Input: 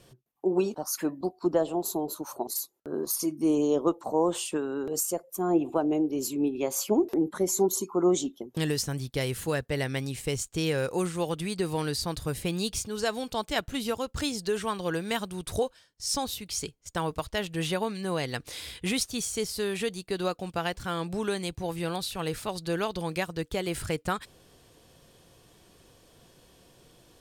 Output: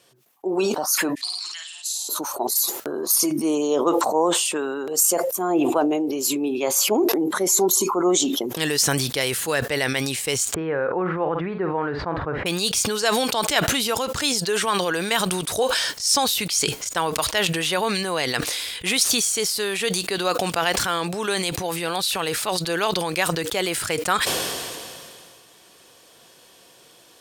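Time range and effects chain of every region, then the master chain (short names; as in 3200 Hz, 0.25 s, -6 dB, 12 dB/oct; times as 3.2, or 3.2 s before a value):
1.15–2.09 elliptic band-pass 2200–9500 Hz, stop band 60 dB + flutter echo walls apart 9.1 m, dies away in 0.67 s
10.54–12.46 LPF 1600 Hz 24 dB/oct + doubler 49 ms -13 dB
whole clip: AGC gain up to 7 dB; HPF 790 Hz 6 dB/oct; sustainer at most 25 dB/s; gain +3 dB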